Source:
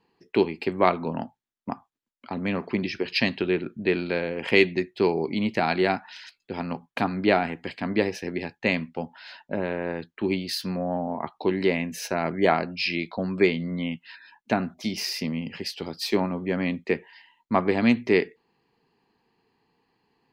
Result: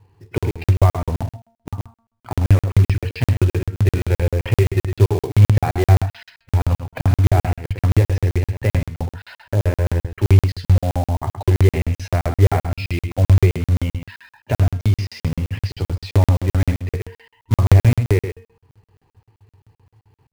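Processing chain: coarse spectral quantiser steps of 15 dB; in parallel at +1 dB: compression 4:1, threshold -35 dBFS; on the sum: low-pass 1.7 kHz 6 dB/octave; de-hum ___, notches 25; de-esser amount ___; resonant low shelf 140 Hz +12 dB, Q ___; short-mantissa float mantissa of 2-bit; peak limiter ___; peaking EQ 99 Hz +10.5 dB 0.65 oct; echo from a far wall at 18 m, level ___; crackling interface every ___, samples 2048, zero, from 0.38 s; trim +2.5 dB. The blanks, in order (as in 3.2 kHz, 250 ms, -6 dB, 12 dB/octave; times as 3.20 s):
228.8 Hz, 95%, 3, -11 dBFS, -8 dB, 0.13 s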